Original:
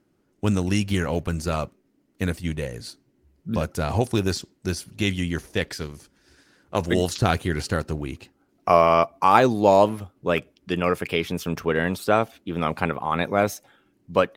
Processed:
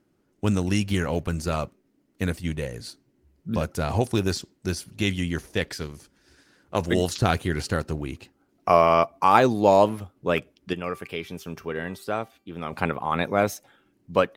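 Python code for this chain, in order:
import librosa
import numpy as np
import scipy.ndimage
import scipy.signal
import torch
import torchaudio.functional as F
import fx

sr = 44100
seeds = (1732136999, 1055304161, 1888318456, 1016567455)

y = fx.comb_fb(x, sr, f0_hz=390.0, decay_s=0.37, harmonics='all', damping=0.0, mix_pct=60, at=(10.73, 12.73))
y = y * 10.0 ** (-1.0 / 20.0)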